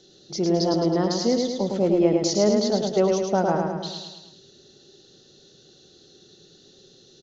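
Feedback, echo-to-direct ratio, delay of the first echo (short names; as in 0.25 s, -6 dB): 54%, -2.5 dB, 0.107 s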